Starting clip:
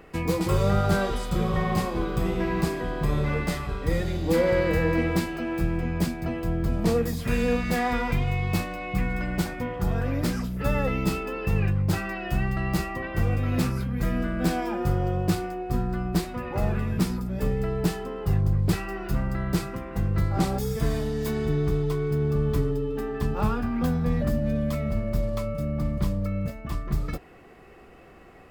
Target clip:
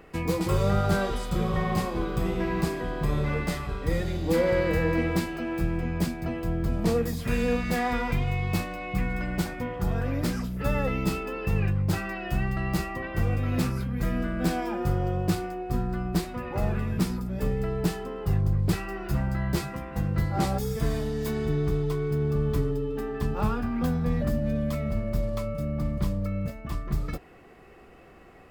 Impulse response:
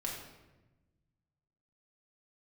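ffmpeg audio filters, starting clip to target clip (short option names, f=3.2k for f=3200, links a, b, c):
-filter_complex "[0:a]asettb=1/sr,asplit=3[a][b][c];[a]atrim=end=19.084[d];[b]atrim=start=19.08:end=20.58,asetpts=PTS-STARTPTS,afade=t=in:d=0.004:c=qsin,afade=t=out:st=1.496:d=0.004:c=qsin,asplit=2[e][f];[f]adelay=14,volume=-4dB[g];[e][g]amix=inputs=2:normalize=0,atrim=end_sample=66150[h];[c]atrim=start=20.576[i];[d][h]acrossfade=d=0.004:c1=hsin:c2=qsin[j];[j][i]acrossfade=d=0.004:c1=qsin:c2=hsin,volume=-1.5dB"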